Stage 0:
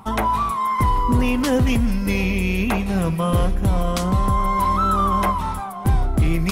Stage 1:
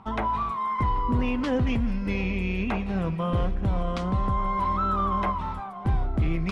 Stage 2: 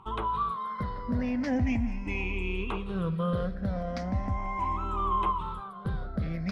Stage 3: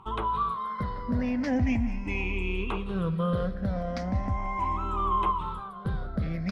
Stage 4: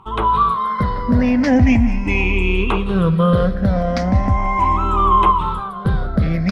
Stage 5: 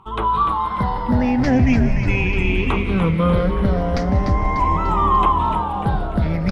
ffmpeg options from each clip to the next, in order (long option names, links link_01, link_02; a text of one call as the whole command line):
ffmpeg -i in.wav -af "lowpass=3400,volume=-6.5dB" out.wav
ffmpeg -i in.wav -af "afftfilt=real='re*pow(10,14/40*sin(2*PI*(0.66*log(max(b,1)*sr/1024/100)/log(2)-(0.38)*(pts-256)/sr)))':imag='im*pow(10,14/40*sin(2*PI*(0.66*log(max(b,1)*sr/1024/100)/log(2)-(0.38)*(pts-256)/sr)))':win_size=1024:overlap=0.75,volume=-6.5dB" out.wav
ffmpeg -i in.wav -af "aecho=1:1:187:0.0841,volume=1.5dB" out.wav
ffmpeg -i in.wav -af "dynaudnorm=framelen=110:gausssize=3:maxgain=8dB,volume=5dB" out.wav
ffmpeg -i in.wav -filter_complex "[0:a]asplit=8[link_01][link_02][link_03][link_04][link_05][link_06][link_07][link_08];[link_02]adelay=296,afreqshift=-120,volume=-6.5dB[link_09];[link_03]adelay=592,afreqshift=-240,volume=-11.5dB[link_10];[link_04]adelay=888,afreqshift=-360,volume=-16.6dB[link_11];[link_05]adelay=1184,afreqshift=-480,volume=-21.6dB[link_12];[link_06]adelay=1480,afreqshift=-600,volume=-26.6dB[link_13];[link_07]adelay=1776,afreqshift=-720,volume=-31.7dB[link_14];[link_08]adelay=2072,afreqshift=-840,volume=-36.7dB[link_15];[link_01][link_09][link_10][link_11][link_12][link_13][link_14][link_15]amix=inputs=8:normalize=0,volume=-3dB" out.wav